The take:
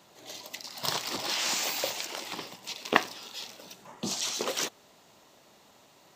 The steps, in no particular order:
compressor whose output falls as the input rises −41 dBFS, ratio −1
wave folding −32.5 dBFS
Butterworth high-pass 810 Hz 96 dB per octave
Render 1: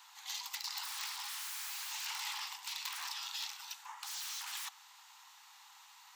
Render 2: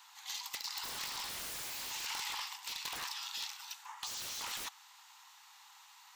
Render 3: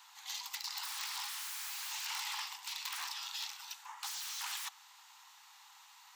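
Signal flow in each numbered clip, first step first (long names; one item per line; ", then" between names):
wave folding, then compressor whose output falls as the input rises, then Butterworth high-pass
Butterworth high-pass, then wave folding, then compressor whose output falls as the input rises
wave folding, then Butterworth high-pass, then compressor whose output falls as the input rises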